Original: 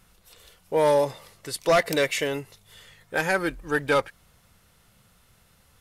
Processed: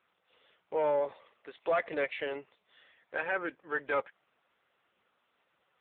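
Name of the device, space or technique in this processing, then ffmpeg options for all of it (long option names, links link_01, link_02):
telephone: -af "highpass=400,lowpass=3300,asoftclip=type=tanh:threshold=-15.5dB,volume=-5dB" -ar 8000 -c:a libopencore_amrnb -b:a 6700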